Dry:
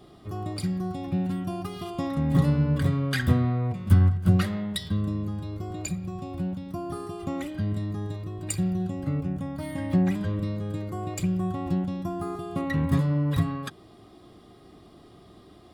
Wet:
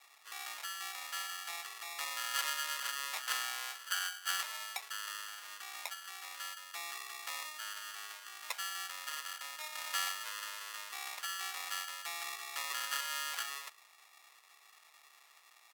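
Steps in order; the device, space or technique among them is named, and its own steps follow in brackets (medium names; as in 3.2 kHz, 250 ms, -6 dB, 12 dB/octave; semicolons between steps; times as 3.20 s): crushed at another speed (playback speed 1.25×; sample-and-hold 23×; playback speed 0.8×); Bessel high-pass 1.5 kHz, order 4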